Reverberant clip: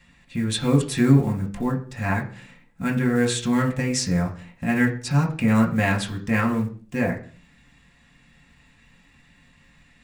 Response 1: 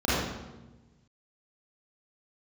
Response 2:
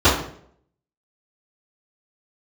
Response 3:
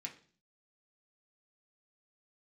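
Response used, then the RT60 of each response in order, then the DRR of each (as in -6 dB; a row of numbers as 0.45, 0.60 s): 3; 1.1, 0.60, 0.45 s; -9.5, -18.0, -0.5 dB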